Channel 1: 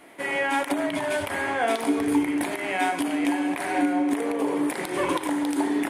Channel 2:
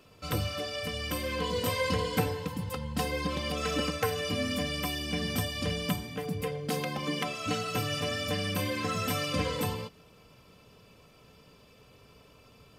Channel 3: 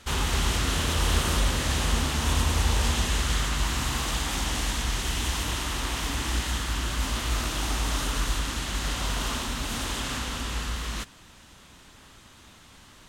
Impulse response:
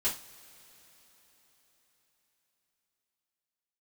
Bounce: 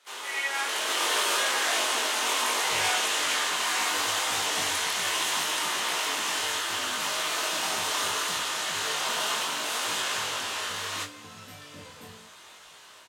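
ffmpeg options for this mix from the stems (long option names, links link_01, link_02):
-filter_complex "[0:a]highpass=1500,adelay=50,volume=2dB[link_01];[1:a]adelay=2400,volume=-15.5dB,asplit=2[link_02][link_03];[link_03]volume=-9.5dB[link_04];[2:a]highpass=frequency=430:width=0.5412,highpass=frequency=430:width=1.3066,dynaudnorm=framelen=500:gausssize=3:maxgain=12dB,volume=-8dB,asplit=2[link_05][link_06];[link_06]volume=-10dB[link_07];[3:a]atrim=start_sample=2205[link_08];[link_04][link_07]amix=inputs=2:normalize=0[link_09];[link_09][link_08]afir=irnorm=-1:irlink=0[link_10];[link_01][link_02][link_05][link_10]amix=inputs=4:normalize=0,flanger=delay=19:depth=3.1:speed=0.7"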